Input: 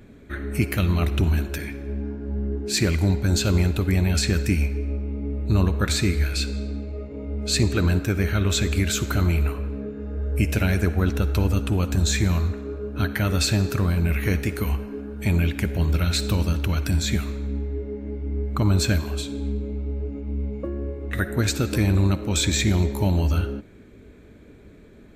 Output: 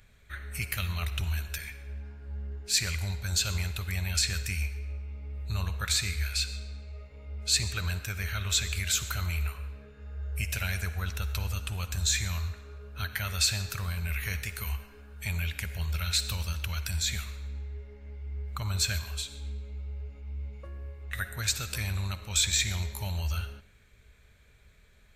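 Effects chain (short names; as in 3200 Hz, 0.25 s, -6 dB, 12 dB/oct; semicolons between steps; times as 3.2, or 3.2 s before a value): passive tone stack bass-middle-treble 10-0-10; on a send: reverb, pre-delay 3 ms, DRR 17 dB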